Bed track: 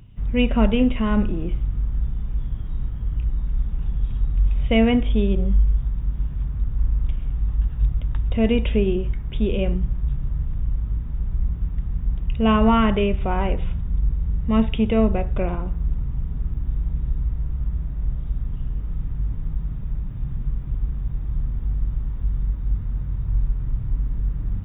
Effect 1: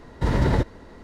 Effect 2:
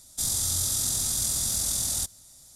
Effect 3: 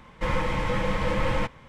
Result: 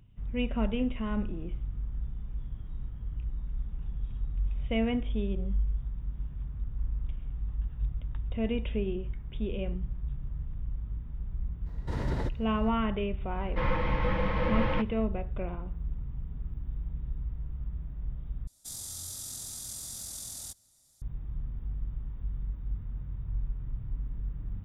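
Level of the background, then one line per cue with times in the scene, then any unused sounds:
bed track −11.5 dB
0:11.66: mix in 1 −12 dB
0:13.35: mix in 3 −3 dB + Bessel low-pass filter 2,900 Hz, order 8
0:18.47: overwrite with 2 −13.5 dB

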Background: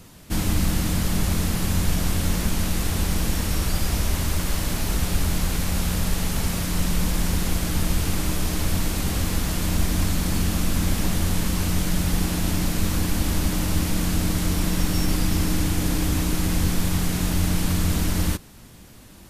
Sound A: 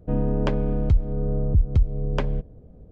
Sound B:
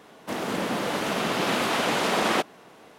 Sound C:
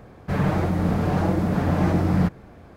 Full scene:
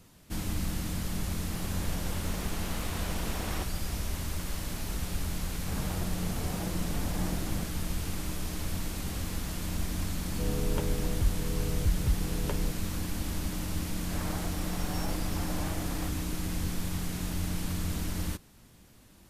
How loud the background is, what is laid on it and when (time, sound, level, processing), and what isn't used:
background −10.5 dB
0:01.22: mix in B −16.5 dB + one half of a high-frequency compander decoder only
0:05.38: mix in C −15.5 dB
0:10.31: mix in A −10.5 dB + comb filter 2.2 ms, depth 41%
0:13.81: mix in C −12 dB + high-pass filter 560 Hz

